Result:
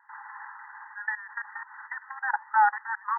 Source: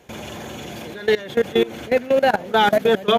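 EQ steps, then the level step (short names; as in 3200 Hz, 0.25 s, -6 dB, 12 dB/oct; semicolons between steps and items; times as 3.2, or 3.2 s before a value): dynamic EQ 1500 Hz, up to -4 dB, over -27 dBFS, Q 1.1; brick-wall FIR band-pass 810–2000 Hz; 0.0 dB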